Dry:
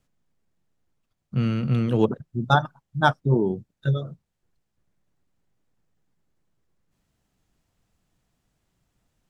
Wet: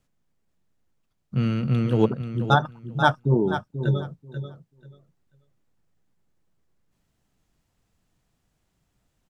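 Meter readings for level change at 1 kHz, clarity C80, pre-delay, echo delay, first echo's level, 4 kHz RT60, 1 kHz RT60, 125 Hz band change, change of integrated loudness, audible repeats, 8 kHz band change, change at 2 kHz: +0.5 dB, none, none, 0.487 s, -10.0 dB, none, none, +0.5 dB, +0.5 dB, 2, n/a, +0.5 dB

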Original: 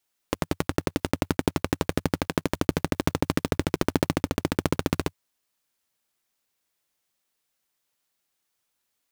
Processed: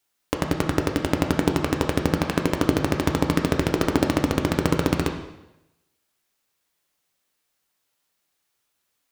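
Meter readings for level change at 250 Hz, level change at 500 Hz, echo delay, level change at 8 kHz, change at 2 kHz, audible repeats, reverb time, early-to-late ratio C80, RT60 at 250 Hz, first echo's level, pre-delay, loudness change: +4.5 dB, +4.5 dB, none, +2.5 dB, +4.0 dB, none, 0.90 s, 10.0 dB, 0.90 s, none, 5 ms, +4.5 dB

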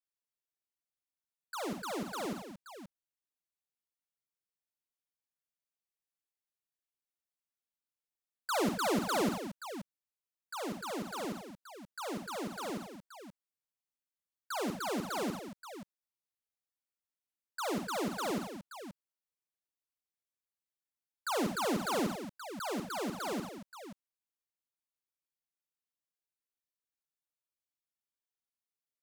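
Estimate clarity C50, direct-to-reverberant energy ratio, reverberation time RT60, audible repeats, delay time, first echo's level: none, none, none, 4, 51 ms, -8.5 dB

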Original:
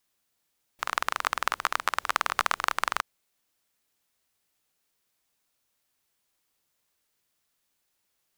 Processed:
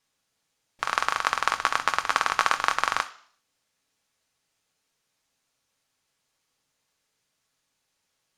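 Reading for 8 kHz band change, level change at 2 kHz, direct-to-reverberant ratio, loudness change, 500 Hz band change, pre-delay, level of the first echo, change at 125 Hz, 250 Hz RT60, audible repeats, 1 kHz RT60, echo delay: +2.0 dB, +3.5 dB, 7.0 dB, +3.5 dB, +3.5 dB, 3 ms, none, n/a, 0.55 s, none, 0.55 s, none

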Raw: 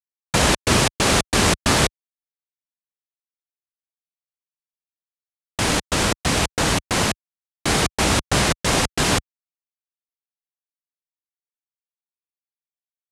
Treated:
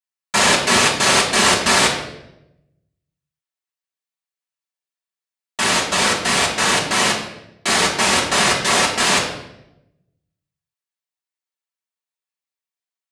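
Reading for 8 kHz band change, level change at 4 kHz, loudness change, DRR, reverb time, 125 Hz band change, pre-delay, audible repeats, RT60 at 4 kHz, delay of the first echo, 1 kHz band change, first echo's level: +4.0 dB, +5.5 dB, +4.0 dB, -5.0 dB, 0.85 s, -6.5 dB, 3 ms, none, 0.65 s, none, +5.0 dB, none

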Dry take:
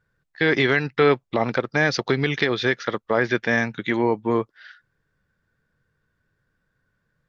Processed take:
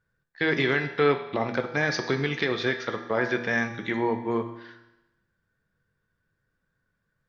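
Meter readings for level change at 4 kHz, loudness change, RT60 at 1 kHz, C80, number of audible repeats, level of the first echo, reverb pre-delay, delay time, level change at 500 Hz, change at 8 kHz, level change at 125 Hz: -4.5 dB, -4.5 dB, 0.95 s, 11.5 dB, none, none, 6 ms, none, -4.5 dB, n/a, -5.0 dB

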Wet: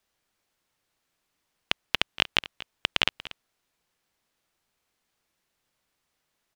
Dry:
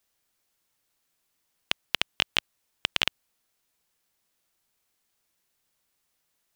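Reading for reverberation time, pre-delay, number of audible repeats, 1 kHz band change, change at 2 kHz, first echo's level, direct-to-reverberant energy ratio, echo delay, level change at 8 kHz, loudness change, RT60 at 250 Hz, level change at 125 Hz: none, none, 1, +2.5 dB, +1.5 dB, -17.0 dB, none, 0.237 s, -3.0 dB, +1.0 dB, none, +3.0 dB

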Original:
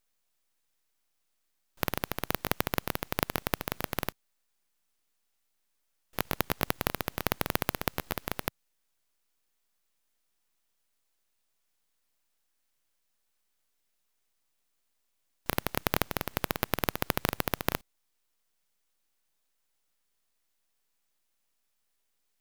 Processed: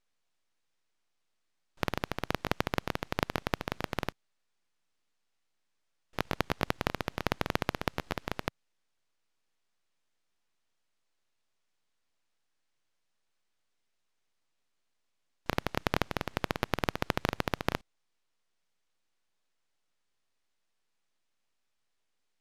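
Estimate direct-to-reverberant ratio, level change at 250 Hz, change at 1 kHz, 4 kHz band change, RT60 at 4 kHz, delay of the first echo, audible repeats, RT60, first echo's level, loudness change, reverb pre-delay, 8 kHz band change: none, 0.0 dB, -0.5 dB, -2.0 dB, none, none, none, none, none, -2.0 dB, none, -9.0 dB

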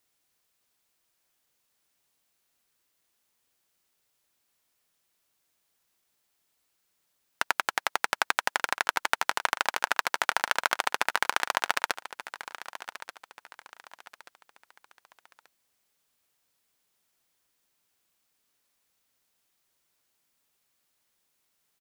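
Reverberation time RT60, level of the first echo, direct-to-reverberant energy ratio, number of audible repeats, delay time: none, -14.0 dB, none, 3, 1.183 s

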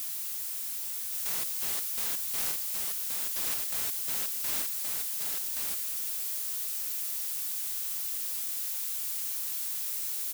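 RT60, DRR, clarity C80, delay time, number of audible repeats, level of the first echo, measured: none, none, none, 1.124 s, 1, -3.0 dB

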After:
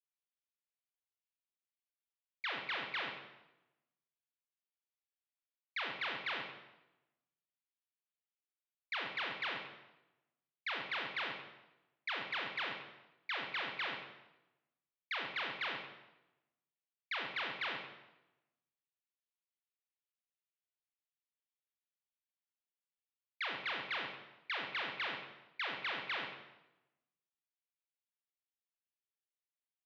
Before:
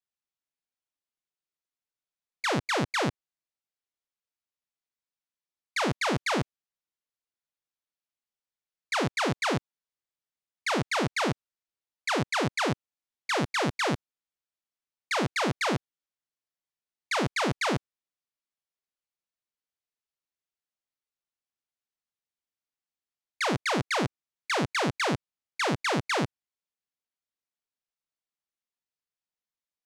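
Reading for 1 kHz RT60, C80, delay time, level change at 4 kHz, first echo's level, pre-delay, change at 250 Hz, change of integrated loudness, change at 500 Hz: 0.95 s, 7.0 dB, 0.104 s, -7.5 dB, -12.0 dB, 24 ms, -24.0 dB, -11.0 dB, -18.5 dB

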